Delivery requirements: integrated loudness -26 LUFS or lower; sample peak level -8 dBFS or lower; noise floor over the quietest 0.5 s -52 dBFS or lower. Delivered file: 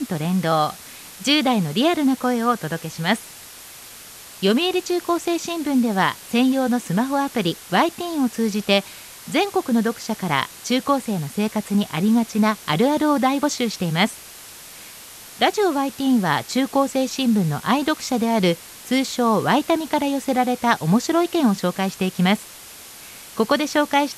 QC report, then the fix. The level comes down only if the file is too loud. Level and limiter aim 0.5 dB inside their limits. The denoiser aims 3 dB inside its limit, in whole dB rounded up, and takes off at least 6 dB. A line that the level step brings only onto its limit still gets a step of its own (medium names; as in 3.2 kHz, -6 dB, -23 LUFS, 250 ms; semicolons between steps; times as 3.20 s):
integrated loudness -21.0 LUFS: fail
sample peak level -2.5 dBFS: fail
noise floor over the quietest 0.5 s -41 dBFS: fail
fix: noise reduction 9 dB, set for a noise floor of -41 dBFS; trim -5.5 dB; peak limiter -8.5 dBFS